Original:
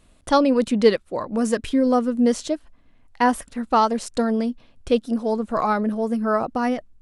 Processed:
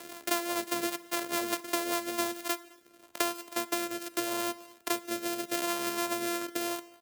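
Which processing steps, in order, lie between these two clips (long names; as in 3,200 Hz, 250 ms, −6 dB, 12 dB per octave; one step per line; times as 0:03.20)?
samples sorted by size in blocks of 128 samples
high-pass filter 410 Hz 12 dB per octave
high-shelf EQ 8,100 Hz +10 dB
downward compressor 4 to 1, threshold −25 dBFS, peak gain reduction 14 dB
rotating-speaker cabinet horn 5 Hz, later 0.8 Hz, at 0:01.89
slap from a distant wall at 36 metres, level −28 dB
dense smooth reverb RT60 0.64 s, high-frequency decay 0.95×, DRR 16.5 dB
multiband upward and downward compressor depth 70%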